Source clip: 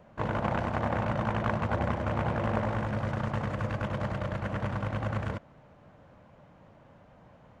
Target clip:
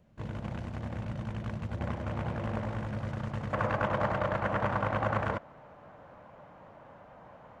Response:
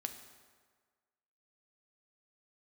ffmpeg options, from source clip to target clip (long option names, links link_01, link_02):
-af "asetnsamples=nb_out_samples=441:pad=0,asendcmd='1.81 equalizer g -4.5;3.53 equalizer g 10.5',equalizer=frequency=960:width=0.44:gain=-13,volume=-3dB"